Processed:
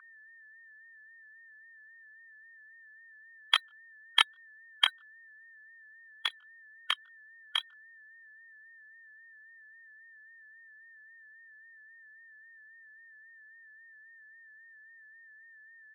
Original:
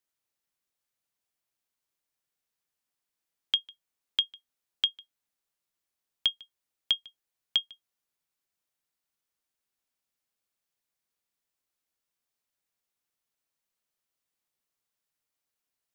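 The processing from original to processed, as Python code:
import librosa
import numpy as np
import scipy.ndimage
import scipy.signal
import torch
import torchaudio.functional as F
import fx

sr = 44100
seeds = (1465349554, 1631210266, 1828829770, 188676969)

y = fx.bin_expand(x, sr, power=2.0)
y = scipy.signal.sosfilt(scipy.signal.butter(2, 330.0, 'highpass', fs=sr, output='sos'), y)
y = fx.chorus_voices(y, sr, voices=2, hz=0.31, base_ms=23, depth_ms=2.1, mix_pct=35)
y = fx.leveller(y, sr, passes=1)
y = fx.tremolo_shape(y, sr, shape='saw_down', hz=4.6, depth_pct=65)
y = fx.high_shelf(y, sr, hz=6100.0, db=-3.5)
y = y + 10.0 ** (-64.0 / 20.0) * np.sin(2.0 * np.pi * 1500.0 * np.arange(len(y)) / sr)
y = fx.vibrato(y, sr, rate_hz=3.7, depth_cents=48.0)
y = fx.pitch_keep_formants(y, sr, semitones=3.0)
y = fx.band_shelf(y, sr, hz=1400.0, db=15.0, octaves=1.7)
y = fx.upward_expand(y, sr, threshold_db=-48.0, expansion=1.5)
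y = F.gain(torch.from_numpy(y), 8.0).numpy()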